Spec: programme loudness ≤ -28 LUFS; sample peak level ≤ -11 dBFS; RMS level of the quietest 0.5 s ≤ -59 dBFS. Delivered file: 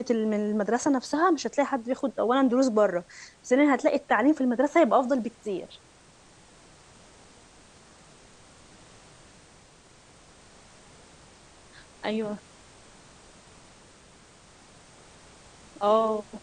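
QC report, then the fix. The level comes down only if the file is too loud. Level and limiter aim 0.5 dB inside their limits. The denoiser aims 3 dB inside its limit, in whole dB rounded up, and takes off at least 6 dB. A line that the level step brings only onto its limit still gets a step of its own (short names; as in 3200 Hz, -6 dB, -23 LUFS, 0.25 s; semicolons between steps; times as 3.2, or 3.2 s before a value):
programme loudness -25.0 LUFS: fail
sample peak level -9.5 dBFS: fail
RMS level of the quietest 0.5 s -55 dBFS: fail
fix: denoiser 6 dB, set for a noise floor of -55 dBFS; gain -3.5 dB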